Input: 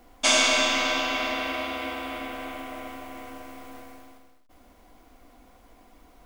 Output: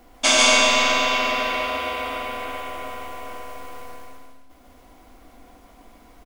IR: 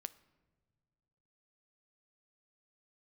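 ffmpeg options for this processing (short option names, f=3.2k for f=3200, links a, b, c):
-filter_complex "[0:a]aecho=1:1:305:0.0944,asplit=2[a][b];[1:a]atrim=start_sample=2205,asetrate=23814,aresample=44100,adelay=145[c];[b][c]afir=irnorm=-1:irlink=0,volume=-1dB[d];[a][d]amix=inputs=2:normalize=0,volume=3dB"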